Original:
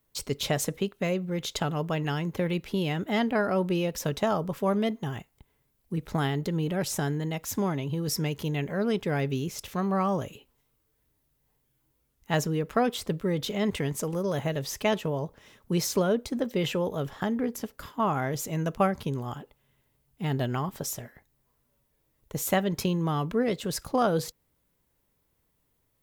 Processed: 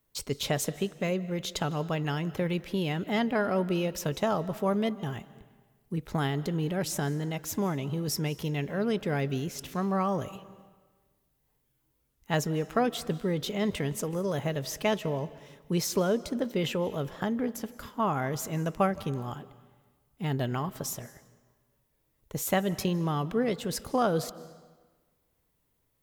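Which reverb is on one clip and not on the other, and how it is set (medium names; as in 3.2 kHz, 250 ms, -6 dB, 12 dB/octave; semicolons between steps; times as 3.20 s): algorithmic reverb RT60 1.4 s, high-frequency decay 0.85×, pre-delay 120 ms, DRR 17.5 dB; trim -1.5 dB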